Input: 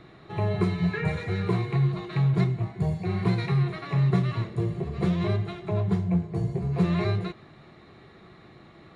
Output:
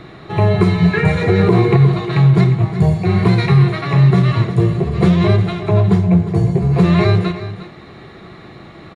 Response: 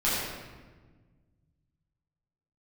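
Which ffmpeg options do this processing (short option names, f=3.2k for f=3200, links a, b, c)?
-filter_complex "[0:a]asettb=1/sr,asplit=3[a][b][c];[a]atrim=end=1.214[d];[b]atrim=start=1.21:end=1.77,asetpts=PTS-STARTPTS,afade=t=in:d=0.004:c=qsin,afade=t=out:st=0.556:d=0.004:c=qsin,equalizer=f=410:w=0.54:g=8.5[e];[c]atrim=start=1.766[f];[d][e]acrossfade=d=0.004:c1=hsin:c2=qsin[g];[g][f]acrossfade=d=0.004:c1=qsin:c2=hsin,aecho=1:1:355:0.211,alimiter=level_in=15dB:limit=-1dB:release=50:level=0:latency=1,volume=-2dB"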